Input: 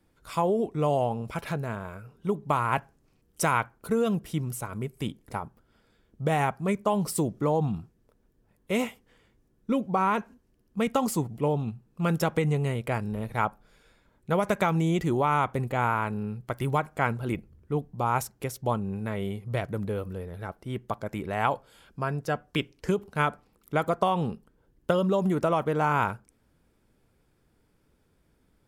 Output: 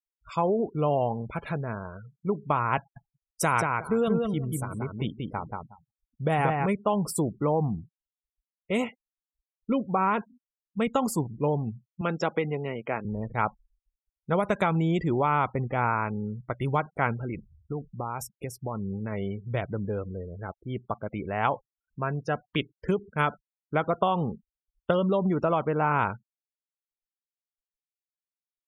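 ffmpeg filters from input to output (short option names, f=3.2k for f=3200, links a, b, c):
-filter_complex "[0:a]asettb=1/sr,asplit=3[a][b][c];[a]atrim=end=2.784[d];[b]atrim=start=2.78:end=6.66,asetpts=PTS-STARTPTS,afade=t=in:d=0.004:c=qsin,afade=t=out:st=3.876:d=0.004:c=qsin,asplit=2[e][f];[f]adelay=182,lowpass=f=4.2k:p=1,volume=-3dB,asplit=2[g][h];[h]adelay=182,lowpass=f=4.2k:p=1,volume=0.21,asplit=2[i][j];[j]adelay=182,lowpass=f=4.2k:p=1,volume=0.21[k];[e][g][i][k]amix=inputs=4:normalize=0,atrim=end_sample=171108[l];[c]atrim=start=6.656[m];[d][l]acrossfade=d=0.004:c1=hsin:c2=qsin[n];[n][m]acrossfade=d=0.004:c1=qsin:c2=hsin,asettb=1/sr,asplit=3[o][p][q];[o]atrim=end=12.014[r];[p]atrim=start=12.01:end=13.05,asetpts=PTS-STARTPTS,afade=t=in:d=0.004:c=qsin,afade=t=out:st=1.036:d=0.004:c=qsin,highpass=230,lowpass=6.4k[s];[q]atrim=start=13.046[t];[r][s]acrossfade=d=0.004:c1=hsin:c2=qsin[u];[u][t]acrossfade=d=0.004:c1=qsin:c2=hsin,asettb=1/sr,asplit=3[v][w][x];[v]atrim=end=17.164[y];[w]atrim=start=17.16:end=19.12,asetpts=PTS-STARTPTS,afade=t=in:d=0.004:c=qsin,afade=t=out:st=1.956:d=0.004:c=qsin,acompressor=threshold=-27dB:ratio=16:attack=3.2:release=140:knee=1:detection=peak[z];[x]atrim=start=19.116[aa];[y][z]acrossfade=d=0.004:c1=hsin:c2=qsin[ab];[ab][aa]acrossfade=d=0.004:c1=qsin:c2=hsin,afftfilt=real='re*gte(hypot(re,im),0.00794)':imag='im*gte(hypot(re,im),0.00794)':win_size=1024:overlap=0.75,afftdn=nr=22:nf=-44"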